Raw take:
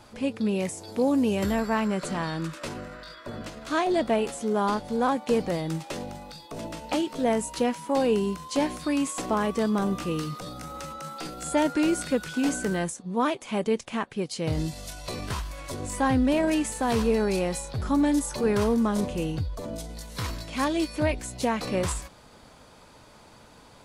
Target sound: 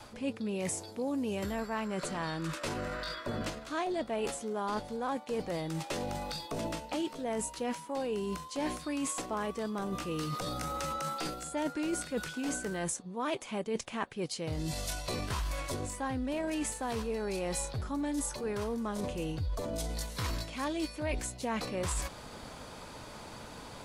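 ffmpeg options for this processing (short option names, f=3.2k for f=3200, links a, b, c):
-af "areverse,acompressor=threshold=-37dB:ratio=6,areverse,adynamicequalizer=threshold=0.00224:dfrequency=200:dqfactor=1.2:tfrequency=200:tqfactor=1.2:attack=5:release=100:ratio=0.375:range=2:mode=cutabove:tftype=bell,volume=5.5dB"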